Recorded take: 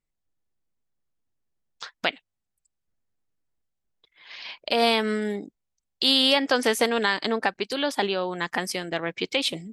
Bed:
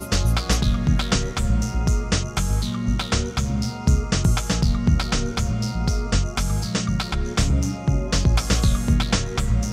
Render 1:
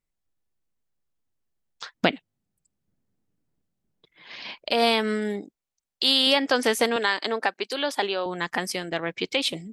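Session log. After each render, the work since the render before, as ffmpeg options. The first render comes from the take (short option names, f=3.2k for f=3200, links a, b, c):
-filter_complex "[0:a]asettb=1/sr,asplit=3[a][b][c];[a]atrim=end=1.954[d];[b]atrim=start=1.95:end=4.55,asetpts=PTS-STARTPTS,afade=t=in:d=0.004:c=qsin,afade=t=out:st=2.596:d=0.004:c=qsin,equalizer=f=190:t=o:w=2.7:g=15[e];[c]atrim=start=4.546[f];[d][e]acrossfade=d=0.004:c1=hsin:c2=qsin[g];[g][f]acrossfade=d=0.004:c1=qsin:c2=hsin,asettb=1/sr,asplit=3[h][i][j];[h]atrim=end=5.414[k];[i]atrim=start=5.41:end=6.27,asetpts=PTS-STARTPTS,afade=t=in:d=0.004:c=qsin,afade=t=out:st=0.856:d=0.004:c=qsin,lowshelf=f=200:g=-10[l];[j]atrim=start=6.266[m];[k][l]acrossfade=d=0.004:c1=hsin:c2=qsin[n];[n][m]acrossfade=d=0.004:c1=qsin:c2=hsin,asettb=1/sr,asplit=3[o][p][q];[o]atrim=end=6.964[r];[p]atrim=start=6.96:end=8.26,asetpts=PTS-STARTPTS,afade=t=in:d=0.004:c=qsin,afade=t=out:st=1.296:d=0.004:c=qsin,highpass=320[s];[q]atrim=start=8.256[t];[r][s]acrossfade=d=0.004:c1=hsin:c2=qsin[u];[u][t]acrossfade=d=0.004:c1=qsin:c2=hsin"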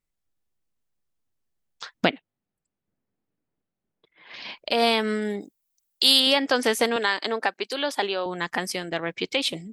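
-filter_complex "[0:a]asettb=1/sr,asplit=3[a][b][c];[a]atrim=end=2.104[d];[b]atrim=start=2.1:end=4.34,asetpts=PTS-STARTPTS,afade=t=in:d=0.004:c=qsin,afade=t=out:st=2.236:d=0.004:c=qsin,bass=f=250:g=-8,treble=f=4k:g=-14[e];[c]atrim=start=4.336[f];[d][e]acrossfade=d=0.004:c1=hsin:c2=qsin[g];[g][f]acrossfade=d=0.004:c1=qsin:c2=hsin,asettb=1/sr,asplit=3[h][i][j];[h]atrim=end=5.404[k];[i]atrim=start=5.4:end=6.2,asetpts=PTS-STARTPTS,afade=t=in:d=0.004:c=qsin,afade=t=out:st=0.796:d=0.004:c=qsin,aemphasis=mode=production:type=50fm[l];[j]atrim=start=6.196[m];[k][l]acrossfade=d=0.004:c1=hsin:c2=qsin[n];[n][m]acrossfade=d=0.004:c1=qsin:c2=hsin"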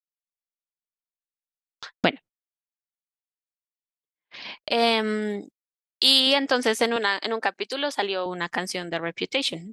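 -af "agate=range=-40dB:threshold=-42dB:ratio=16:detection=peak,lowpass=9.5k"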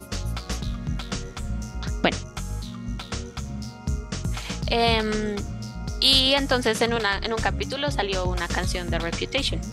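-filter_complex "[1:a]volume=-9.5dB[a];[0:a][a]amix=inputs=2:normalize=0"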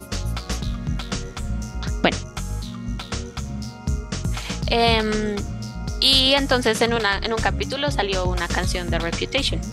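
-af "volume=3dB,alimiter=limit=-3dB:level=0:latency=1"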